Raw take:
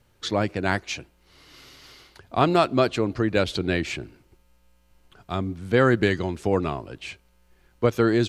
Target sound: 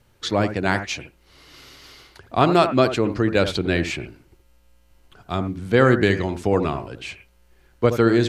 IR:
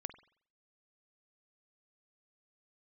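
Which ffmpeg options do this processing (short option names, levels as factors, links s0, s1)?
-filter_complex "[1:a]atrim=start_sample=2205,atrim=end_sample=3528,asetrate=28665,aresample=44100[s0];[0:a][s0]afir=irnorm=-1:irlink=0,volume=1.58"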